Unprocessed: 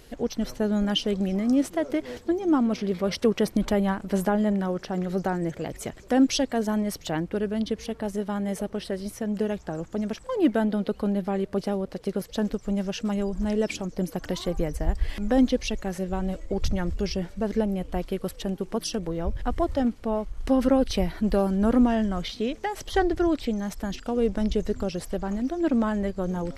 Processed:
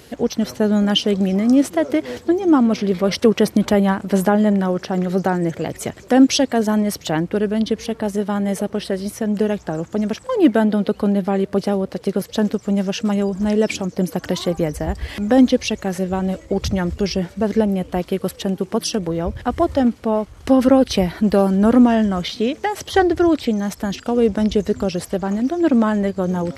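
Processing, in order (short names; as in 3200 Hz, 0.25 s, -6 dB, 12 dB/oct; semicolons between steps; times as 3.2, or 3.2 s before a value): HPF 68 Hz 24 dB/oct; gain +8 dB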